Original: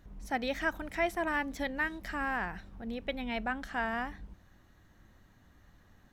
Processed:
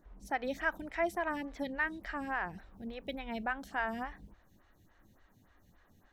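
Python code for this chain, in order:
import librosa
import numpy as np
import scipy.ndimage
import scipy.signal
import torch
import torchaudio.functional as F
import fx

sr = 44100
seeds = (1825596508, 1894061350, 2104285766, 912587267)

y = fx.high_shelf(x, sr, hz=10000.0, db=fx.steps((0.0, -4.5), (2.58, 5.0)))
y = fx.stagger_phaser(y, sr, hz=3.5)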